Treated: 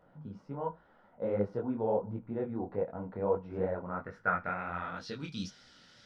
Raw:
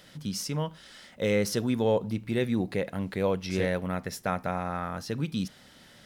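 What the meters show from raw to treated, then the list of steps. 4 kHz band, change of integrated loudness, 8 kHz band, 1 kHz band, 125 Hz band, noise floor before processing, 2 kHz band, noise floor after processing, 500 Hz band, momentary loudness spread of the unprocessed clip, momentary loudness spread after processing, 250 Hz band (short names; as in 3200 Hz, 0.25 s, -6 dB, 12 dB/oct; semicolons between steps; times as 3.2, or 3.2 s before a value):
under -10 dB, -5.5 dB, under -15 dB, -1.5 dB, -9.5 dB, -55 dBFS, -3.5 dB, -64 dBFS, -4.5 dB, 8 LU, 9 LU, -8.5 dB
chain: low-pass sweep 850 Hz -> 5300 Hz, 3.74–5.29; bell 1400 Hz +7.5 dB 0.24 oct; wow and flutter 26 cents; resonator 480 Hz, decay 0.21 s, harmonics all, mix 60%; detuned doubles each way 49 cents; gain +2.5 dB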